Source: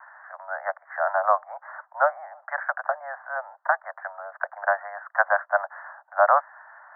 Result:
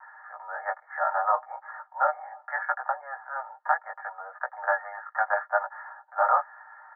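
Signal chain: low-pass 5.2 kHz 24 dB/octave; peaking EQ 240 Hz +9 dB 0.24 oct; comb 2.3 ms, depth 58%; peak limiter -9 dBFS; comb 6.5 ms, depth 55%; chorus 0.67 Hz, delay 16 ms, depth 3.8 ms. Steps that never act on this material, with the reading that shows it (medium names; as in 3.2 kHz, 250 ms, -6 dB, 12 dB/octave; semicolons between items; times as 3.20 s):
low-pass 5.2 kHz: input has nothing above 2 kHz; peaking EQ 240 Hz: input has nothing below 480 Hz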